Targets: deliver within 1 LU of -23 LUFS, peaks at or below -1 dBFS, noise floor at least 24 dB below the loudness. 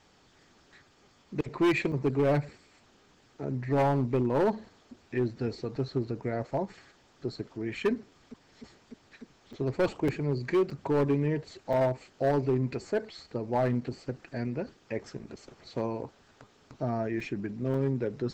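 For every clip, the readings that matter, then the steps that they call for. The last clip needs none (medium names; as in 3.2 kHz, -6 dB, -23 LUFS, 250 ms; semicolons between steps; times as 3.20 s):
clipped samples 1.3%; clipping level -20.5 dBFS; dropouts 7; longest dropout 4.0 ms; loudness -31.0 LUFS; peak level -20.5 dBFS; loudness target -23.0 LUFS
-> clip repair -20.5 dBFS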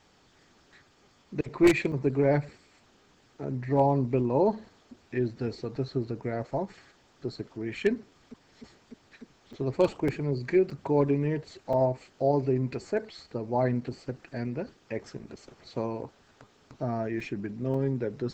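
clipped samples 0.0%; dropouts 7; longest dropout 4.0 ms
-> interpolate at 1.92/9.53/10.08/10.70/11.73/17.20/17.74 s, 4 ms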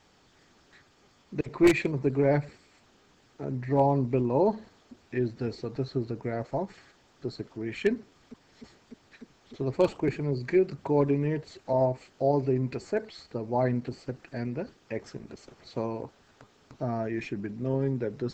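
dropouts 0; loudness -29.5 LUFS; peak level -11.5 dBFS; loudness target -23.0 LUFS
-> trim +6.5 dB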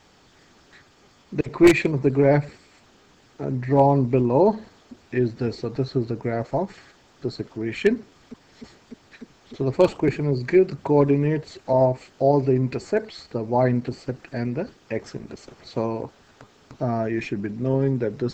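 loudness -23.0 LUFS; peak level -5.0 dBFS; noise floor -56 dBFS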